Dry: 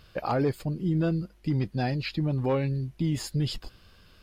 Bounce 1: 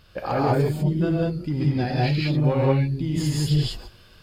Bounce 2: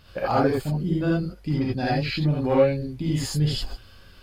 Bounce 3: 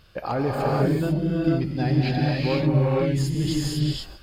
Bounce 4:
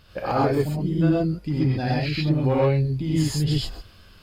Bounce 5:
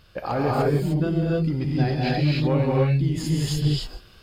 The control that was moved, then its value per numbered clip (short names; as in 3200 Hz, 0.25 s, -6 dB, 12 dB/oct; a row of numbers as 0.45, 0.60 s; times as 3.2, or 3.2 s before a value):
non-linear reverb, gate: 0.22, 0.1, 0.52, 0.15, 0.33 s